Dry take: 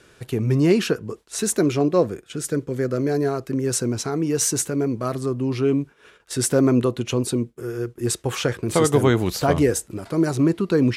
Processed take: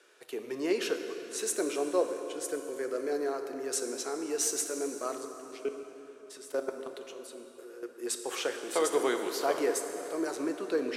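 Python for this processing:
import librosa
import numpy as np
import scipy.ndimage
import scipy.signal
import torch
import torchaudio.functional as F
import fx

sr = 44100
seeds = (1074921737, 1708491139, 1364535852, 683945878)

y = scipy.signal.sosfilt(scipy.signal.butter(4, 360.0, 'highpass', fs=sr, output='sos'), x)
y = fx.level_steps(y, sr, step_db=20, at=(5.25, 7.83))
y = fx.rev_plate(y, sr, seeds[0], rt60_s=3.7, hf_ratio=0.7, predelay_ms=0, drr_db=5.5)
y = F.gain(torch.from_numpy(y), -8.5).numpy()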